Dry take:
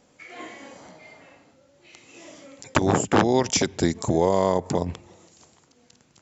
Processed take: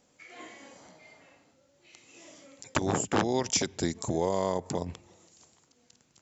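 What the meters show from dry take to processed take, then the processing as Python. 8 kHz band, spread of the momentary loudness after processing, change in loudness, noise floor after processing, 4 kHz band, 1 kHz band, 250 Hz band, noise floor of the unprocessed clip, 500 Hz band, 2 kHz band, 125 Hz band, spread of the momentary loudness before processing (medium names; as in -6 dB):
no reading, 19 LU, -7.0 dB, -68 dBFS, -5.0 dB, -7.5 dB, -8.0 dB, -61 dBFS, -8.0 dB, -7.0 dB, -8.0 dB, 20 LU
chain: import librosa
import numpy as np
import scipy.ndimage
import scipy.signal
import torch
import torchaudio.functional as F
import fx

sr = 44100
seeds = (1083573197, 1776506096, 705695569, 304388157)

y = fx.high_shelf(x, sr, hz=4200.0, db=6.5)
y = y * 10.0 ** (-8.0 / 20.0)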